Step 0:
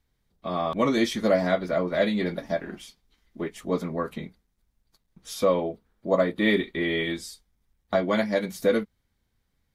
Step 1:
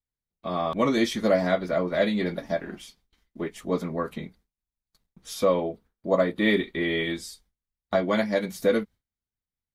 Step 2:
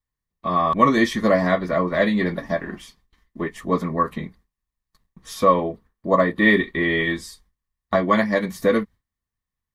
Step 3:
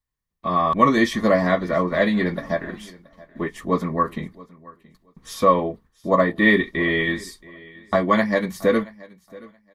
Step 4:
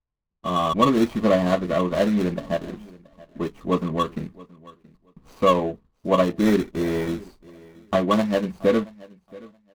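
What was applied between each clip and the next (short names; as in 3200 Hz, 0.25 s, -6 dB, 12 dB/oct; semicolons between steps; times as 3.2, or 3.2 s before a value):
gate with hold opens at -54 dBFS
low shelf 280 Hz +7 dB; small resonant body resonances 1100/1800 Hz, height 13 dB, ringing for 20 ms; gain +1 dB
feedback echo 0.676 s, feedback 18%, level -22 dB
median filter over 25 samples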